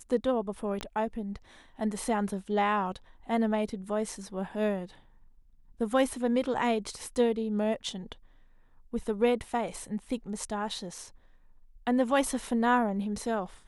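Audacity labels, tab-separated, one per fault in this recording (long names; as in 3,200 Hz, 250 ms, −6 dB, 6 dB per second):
0.810000	0.810000	click −20 dBFS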